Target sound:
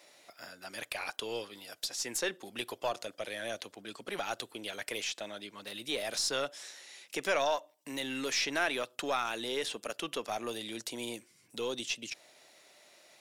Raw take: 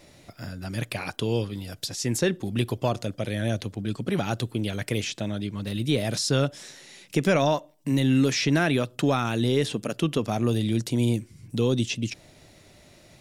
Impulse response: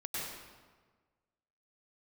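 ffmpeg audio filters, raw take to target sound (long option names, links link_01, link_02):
-filter_complex "[0:a]highpass=600,asplit=2[link_01][link_02];[link_02]aeval=exprs='clip(val(0),-1,0.0168)':channel_layout=same,volume=-8.5dB[link_03];[link_01][link_03]amix=inputs=2:normalize=0,volume=-6dB"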